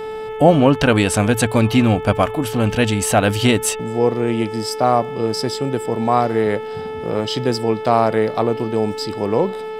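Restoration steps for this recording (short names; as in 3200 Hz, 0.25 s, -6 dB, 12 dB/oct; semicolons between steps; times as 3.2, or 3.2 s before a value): de-click; de-hum 436.3 Hz, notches 8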